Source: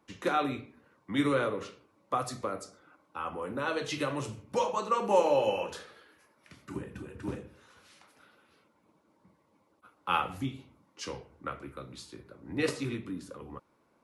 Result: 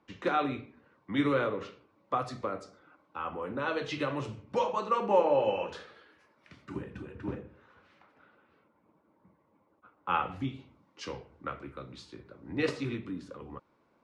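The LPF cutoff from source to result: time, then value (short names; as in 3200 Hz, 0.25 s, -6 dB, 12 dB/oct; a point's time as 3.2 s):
4.99 s 4000 Hz
5.28 s 2000 Hz
5.8 s 4500 Hz
7.01 s 4500 Hz
7.43 s 2000 Hz
10.09 s 2000 Hz
10.55 s 4700 Hz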